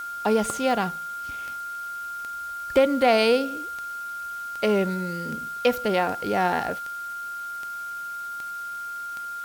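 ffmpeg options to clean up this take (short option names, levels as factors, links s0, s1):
-af "adeclick=t=4,bandreject=f=1400:w=30,afwtdn=0.0035"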